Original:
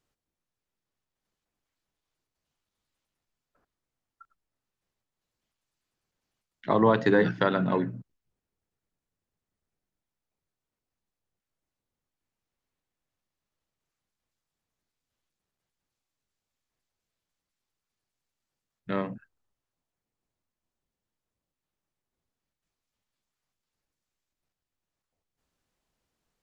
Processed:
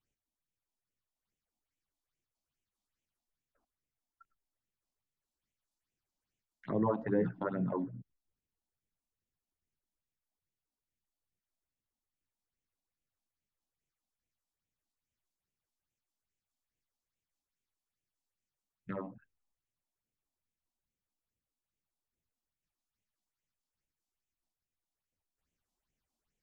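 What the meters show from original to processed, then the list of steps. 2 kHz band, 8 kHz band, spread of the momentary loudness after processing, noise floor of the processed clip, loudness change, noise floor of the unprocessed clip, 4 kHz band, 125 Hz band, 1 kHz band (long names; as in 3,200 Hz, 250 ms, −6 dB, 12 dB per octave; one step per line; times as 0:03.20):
−17.5 dB, can't be measured, 19 LU, below −85 dBFS, −9.5 dB, below −85 dBFS, below −25 dB, −7.5 dB, −12.0 dB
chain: treble cut that deepens with the level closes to 1,100 Hz, closed at −28 dBFS
all-pass phaser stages 6, 2.4 Hz, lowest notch 110–1,300 Hz
level −6 dB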